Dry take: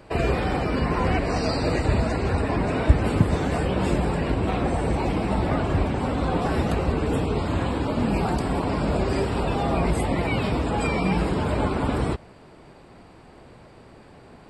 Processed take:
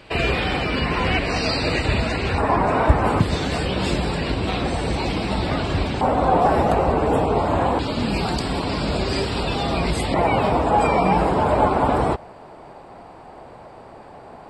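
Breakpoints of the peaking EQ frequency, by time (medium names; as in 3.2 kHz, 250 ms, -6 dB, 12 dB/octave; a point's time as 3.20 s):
peaking EQ +12.5 dB 1.5 oct
3.1 kHz
from 2.38 s 960 Hz
from 3.20 s 4.2 kHz
from 6.01 s 750 Hz
from 7.79 s 4.3 kHz
from 10.14 s 780 Hz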